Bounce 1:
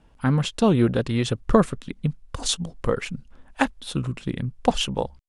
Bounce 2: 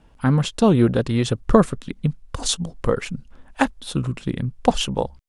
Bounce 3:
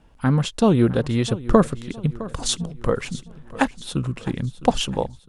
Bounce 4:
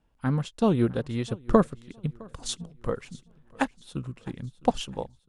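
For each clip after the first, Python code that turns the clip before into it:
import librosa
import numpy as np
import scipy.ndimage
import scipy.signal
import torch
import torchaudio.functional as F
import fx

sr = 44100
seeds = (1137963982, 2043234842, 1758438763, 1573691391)

y1 = fx.dynamic_eq(x, sr, hz=2500.0, q=1.0, threshold_db=-42.0, ratio=4.0, max_db=-3)
y1 = y1 * librosa.db_to_amplitude(3.0)
y2 = fx.echo_feedback(y1, sr, ms=660, feedback_pct=46, wet_db=-17)
y2 = y2 * librosa.db_to_amplitude(-1.0)
y3 = fx.upward_expand(y2, sr, threshold_db=-33.0, expansion=1.5)
y3 = y3 * librosa.db_to_amplitude(-3.5)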